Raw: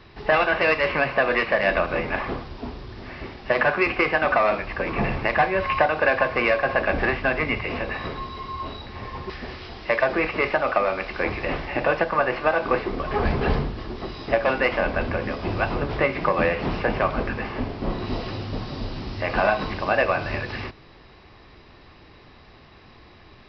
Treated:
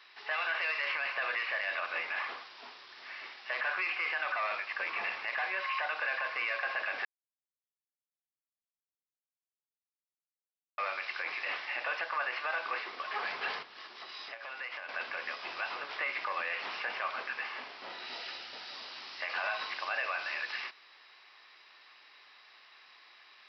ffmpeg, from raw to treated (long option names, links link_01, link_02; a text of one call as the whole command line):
ffmpeg -i in.wav -filter_complex "[0:a]asettb=1/sr,asplit=3[link_01][link_02][link_03];[link_01]atrim=end=13.624[link_04];[link_02]atrim=start=13.62:end=14.89,asetpts=PTS-STARTPTS,afade=type=in:duration=0.004:curve=qsin,afade=type=out:start_time=1.266:duration=0.004:curve=qsin,acompressor=threshold=-29dB:ratio=10:attack=3.2:release=140:knee=1:detection=peak[link_05];[link_03]atrim=start=14.886[link_06];[link_04][link_05]acrossfade=duration=0.004:curve1=hsin:curve2=qsin[link_07];[link_07][link_06]acrossfade=duration=0.004:curve1=qsin:curve2=hsin,asettb=1/sr,asplit=3[link_08][link_09][link_10];[link_08]atrim=end=17.854[link_11];[link_09]atrim=start=17.85:end=18.74,asetpts=PTS-STARTPTS,afade=type=in:duration=0.004:curve=qsin,afade=type=out:start_time=0.886:duration=0.004:curve=qsin,asuperstop=centerf=1100:order=4:qfactor=6.9[link_12];[link_10]atrim=start=18.736[link_13];[link_11][link_12]acrossfade=duration=0.004:curve1=hsin:curve2=qsin[link_14];[link_14][link_13]acrossfade=duration=0.004:curve1=qsin:curve2=hsin,asplit=3[link_15][link_16][link_17];[link_15]atrim=end=7.05,asetpts=PTS-STARTPTS,afade=type=out:start_time=7.046:duration=0.004:curve=hsin[link_18];[link_16]atrim=start=7.05:end=10.78,asetpts=PTS-STARTPTS,volume=0[link_19];[link_17]atrim=start=10.78,asetpts=PTS-STARTPTS,afade=type=in:duration=0.004:curve=hsin[link_20];[link_18][link_19][link_20]concat=n=3:v=0:a=1,highpass=1400,alimiter=limit=-22.5dB:level=0:latency=1:release=23,volume=-2dB" out.wav